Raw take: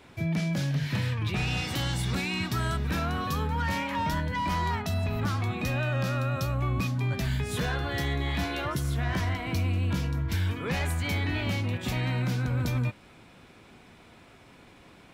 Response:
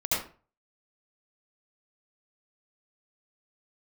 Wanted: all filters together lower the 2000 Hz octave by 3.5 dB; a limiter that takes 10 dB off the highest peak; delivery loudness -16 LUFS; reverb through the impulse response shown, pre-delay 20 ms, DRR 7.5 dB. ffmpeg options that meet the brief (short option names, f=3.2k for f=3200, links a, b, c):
-filter_complex "[0:a]equalizer=f=2k:t=o:g=-4.5,alimiter=level_in=4dB:limit=-24dB:level=0:latency=1,volume=-4dB,asplit=2[a][b];[1:a]atrim=start_sample=2205,adelay=20[c];[b][c]afir=irnorm=-1:irlink=0,volume=-17dB[d];[a][d]amix=inputs=2:normalize=0,volume=19.5dB"